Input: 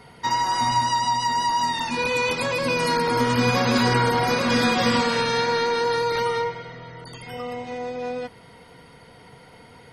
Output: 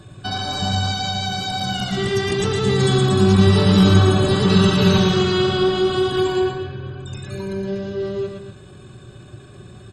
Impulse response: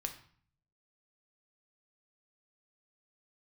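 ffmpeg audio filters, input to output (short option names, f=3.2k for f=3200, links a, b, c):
-af "equalizer=f=160:t=o:w=0.67:g=10,equalizer=f=1k:t=o:w=0.67:g=-12,equalizer=f=2.5k:t=o:w=0.67:g=-11,asetrate=35002,aresample=44100,atempo=1.25992,equalizer=f=140:w=6.2:g=-4.5,bandreject=f=490:w=12,aecho=1:1:113.7|242:0.562|0.282,volume=5dB"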